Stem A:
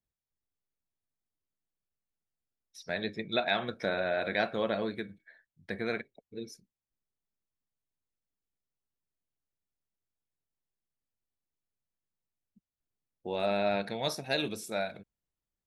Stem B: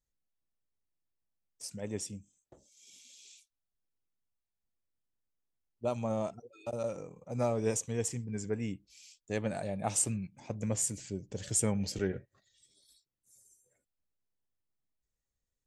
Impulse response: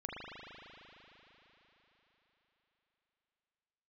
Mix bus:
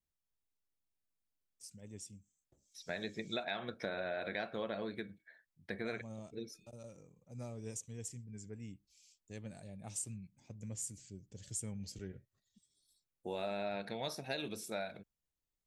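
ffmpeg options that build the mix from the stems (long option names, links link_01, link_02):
-filter_complex "[0:a]volume=-3.5dB[link_01];[1:a]equalizer=frequency=860:width=0.38:gain=-12,volume=-8dB[link_02];[link_01][link_02]amix=inputs=2:normalize=0,acompressor=threshold=-36dB:ratio=4"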